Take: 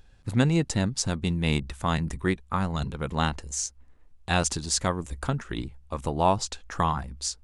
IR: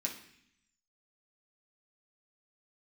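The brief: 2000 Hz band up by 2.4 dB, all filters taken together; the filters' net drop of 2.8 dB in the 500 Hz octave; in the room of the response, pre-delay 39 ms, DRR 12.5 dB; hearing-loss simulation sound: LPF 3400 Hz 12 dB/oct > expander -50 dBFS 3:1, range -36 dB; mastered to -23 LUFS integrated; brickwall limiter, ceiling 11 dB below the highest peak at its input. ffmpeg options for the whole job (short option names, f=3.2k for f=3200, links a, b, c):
-filter_complex "[0:a]equalizer=f=500:t=o:g=-4,equalizer=f=2k:t=o:g=4,alimiter=limit=-17.5dB:level=0:latency=1,asplit=2[a][b];[1:a]atrim=start_sample=2205,adelay=39[c];[b][c]afir=irnorm=-1:irlink=0,volume=-13.5dB[d];[a][d]amix=inputs=2:normalize=0,lowpass=3.4k,agate=range=-36dB:threshold=-50dB:ratio=3,volume=8dB"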